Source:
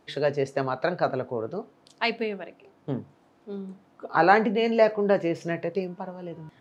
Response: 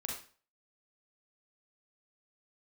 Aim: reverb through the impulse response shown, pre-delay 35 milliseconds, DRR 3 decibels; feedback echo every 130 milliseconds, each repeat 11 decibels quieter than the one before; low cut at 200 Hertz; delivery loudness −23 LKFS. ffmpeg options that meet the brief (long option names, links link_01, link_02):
-filter_complex "[0:a]highpass=200,aecho=1:1:130|260|390:0.282|0.0789|0.0221,asplit=2[link_01][link_02];[1:a]atrim=start_sample=2205,adelay=35[link_03];[link_02][link_03]afir=irnorm=-1:irlink=0,volume=-3.5dB[link_04];[link_01][link_04]amix=inputs=2:normalize=0,volume=1dB"